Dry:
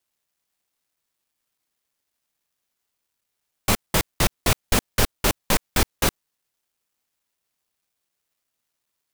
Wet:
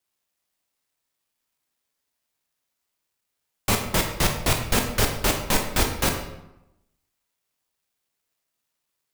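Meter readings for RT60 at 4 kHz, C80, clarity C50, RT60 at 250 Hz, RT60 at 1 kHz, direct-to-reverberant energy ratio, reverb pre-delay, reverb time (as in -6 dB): 0.60 s, 9.0 dB, 6.5 dB, 1.0 s, 0.90 s, 2.5 dB, 15 ms, 0.90 s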